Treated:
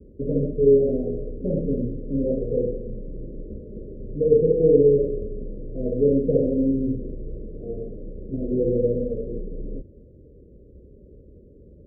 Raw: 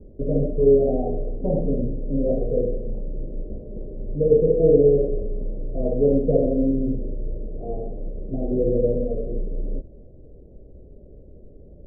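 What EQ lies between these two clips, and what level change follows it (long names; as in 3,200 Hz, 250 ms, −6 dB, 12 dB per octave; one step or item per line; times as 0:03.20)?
high-pass filter 41 Hz 12 dB per octave
Butterworth low-pass 540 Hz 48 dB per octave
mains-hum notches 50/100/150 Hz
0.0 dB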